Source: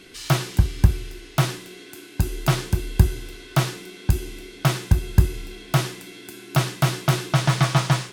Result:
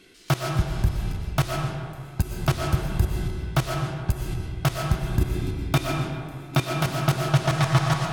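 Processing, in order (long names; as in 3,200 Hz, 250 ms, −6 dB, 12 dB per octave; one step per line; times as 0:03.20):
output level in coarse steps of 18 dB
0:05.09–0:06.71: hollow resonant body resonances 280/2,400/3,600 Hz, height 11 dB
convolution reverb RT60 2.1 s, pre-delay 80 ms, DRR 0.5 dB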